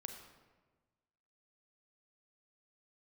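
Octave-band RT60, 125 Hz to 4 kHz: 1.7, 1.5, 1.4, 1.3, 1.1, 0.85 seconds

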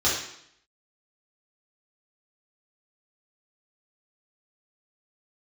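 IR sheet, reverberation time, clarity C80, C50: 0.70 s, 6.5 dB, 2.5 dB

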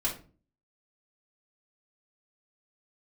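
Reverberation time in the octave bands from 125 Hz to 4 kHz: 0.60, 0.60, 0.45, 0.35, 0.30, 0.25 seconds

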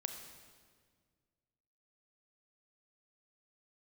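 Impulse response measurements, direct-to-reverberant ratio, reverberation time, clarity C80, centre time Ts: 5.0 dB, 1.8 s, 7.5 dB, 34 ms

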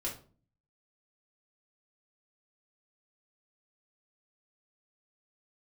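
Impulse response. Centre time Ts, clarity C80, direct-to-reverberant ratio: 23 ms, 14.5 dB, −5.0 dB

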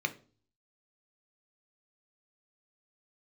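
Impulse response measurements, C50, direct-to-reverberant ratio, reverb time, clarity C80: 17.0 dB, 7.0 dB, 0.40 s, 22.0 dB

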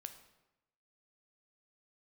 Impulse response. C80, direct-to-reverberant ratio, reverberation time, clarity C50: 12.5 dB, 7.5 dB, 0.95 s, 10.5 dB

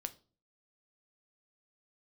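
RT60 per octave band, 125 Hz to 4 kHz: 0.55, 0.55, 0.45, 0.35, 0.25, 0.30 seconds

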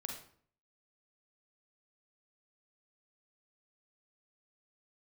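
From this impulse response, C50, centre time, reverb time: 4.5 dB, 31 ms, 0.55 s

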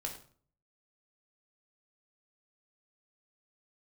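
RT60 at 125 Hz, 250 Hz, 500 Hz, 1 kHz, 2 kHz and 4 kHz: 0.70, 0.55, 0.50, 0.45, 0.40, 0.35 seconds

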